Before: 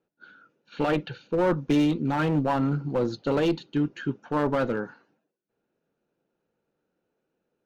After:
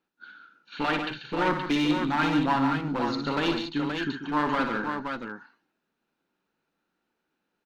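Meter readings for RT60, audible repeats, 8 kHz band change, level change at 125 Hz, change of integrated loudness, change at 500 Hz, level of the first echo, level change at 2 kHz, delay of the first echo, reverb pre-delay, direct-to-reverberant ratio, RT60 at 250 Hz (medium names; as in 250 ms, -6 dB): no reverb, 4, no reading, -5.5 dB, -1.0 dB, -5.5 dB, -7.5 dB, +5.5 dB, 60 ms, no reverb, no reverb, no reverb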